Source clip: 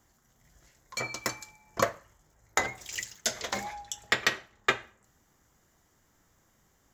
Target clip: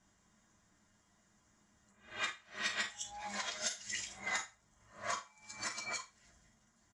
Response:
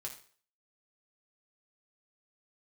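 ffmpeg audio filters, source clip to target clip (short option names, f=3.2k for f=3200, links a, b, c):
-filter_complex "[0:a]areverse,acrossover=split=710|4500[a][b][c];[a]acompressor=threshold=-49dB:ratio=6[d];[b]asoftclip=type=tanh:threshold=-21dB[e];[d][e][c]amix=inputs=3:normalize=0[f];[1:a]atrim=start_sample=2205,asetrate=70560,aresample=44100[g];[f][g]afir=irnorm=-1:irlink=0,aresample=22050,aresample=44100,asplit=2[h][i];[i]alimiter=level_in=8.5dB:limit=-24dB:level=0:latency=1:release=51,volume=-8.5dB,volume=3dB[j];[h][j]amix=inputs=2:normalize=0,equalizer=f=560:t=o:w=0.24:g=-6,volume=-4dB"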